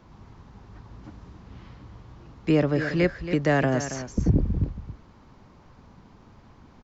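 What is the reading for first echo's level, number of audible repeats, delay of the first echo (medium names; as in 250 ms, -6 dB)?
-11.0 dB, 1, 276 ms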